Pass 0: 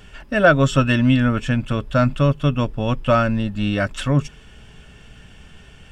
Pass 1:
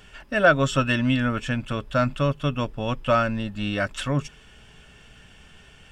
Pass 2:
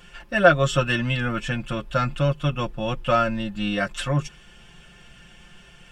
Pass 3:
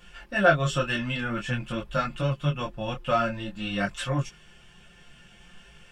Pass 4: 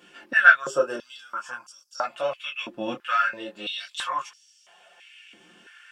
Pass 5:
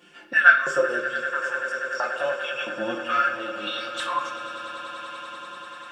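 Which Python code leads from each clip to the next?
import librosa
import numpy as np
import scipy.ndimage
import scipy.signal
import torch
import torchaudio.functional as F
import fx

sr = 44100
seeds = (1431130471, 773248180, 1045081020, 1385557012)

y1 = fx.low_shelf(x, sr, hz=400.0, db=-6.0)
y1 = F.gain(torch.from_numpy(y1), -2.0).numpy()
y2 = y1 + 0.82 * np.pad(y1, (int(5.7 * sr / 1000.0), 0))[:len(y1)]
y2 = F.gain(torch.from_numpy(y2), -1.0).numpy()
y3 = fx.detune_double(y2, sr, cents=18)
y4 = fx.spec_box(y3, sr, start_s=0.6, length_s=1.44, low_hz=1700.0, high_hz=4500.0, gain_db=-14)
y4 = fx.filter_held_highpass(y4, sr, hz=3.0, low_hz=290.0, high_hz=5500.0)
y4 = F.gain(torch.from_numpy(y4), -1.0).numpy()
y5 = fx.echo_swell(y4, sr, ms=97, loudest=8, wet_db=-18.0)
y5 = fx.room_shoebox(y5, sr, seeds[0], volume_m3=570.0, walls='mixed', distance_m=0.84)
y5 = F.gain(torch.from_numpy(y5), -1.5).numpy()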